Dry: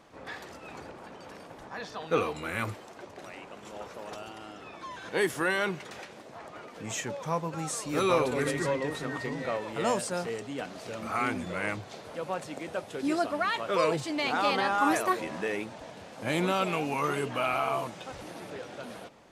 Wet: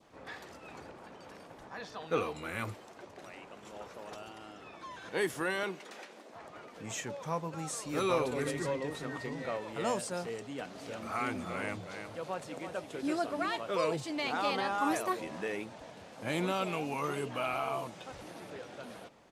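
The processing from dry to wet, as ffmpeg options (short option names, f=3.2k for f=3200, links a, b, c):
-filter_complex "[0:a]asettb=1/sr,asplit=3[a][b][c];[a]atrim=end=5.634[d];[b]atrim=start=5.63:end=6.34,asetpts=PTS-STARTPTS,afade=t=in:d=0.004:c=qsin,afade=t=out:st=0.706:d=0.004:c=qsin,highpass=f=210:w=0.5412,highpass=f=210:w=1.3066[e];[c]atrim=start=6.336[f];[d][e]acrossfade=d=0.004:c1=hsin:c2=qsin[g];[g][f]acrossfade=d=0.004:c1=qsin:c2=hsin,asplit=3[h][i][j];[h]afade=t=out:st=10.74:d=0.02[k];[i]aecho=1:1:330:0.398,afade=t=in:st=10.74:d=0.02,afade=t=out:st=13.57:d=0.02[l];[j]afade=t=in:st=13.57:d=0.02[m];[k][l][m]amix=inputs=3:normalize=0,adynamicequalizer=threshold=0.00891:dfrequency=1600:dqfactor=1.3:tfrequency=1600:tqfactor=1.3:attack=5:release=100:ratio=0.375:range=2:mode=cutabove:tftype=bell,volume=-4.5dB"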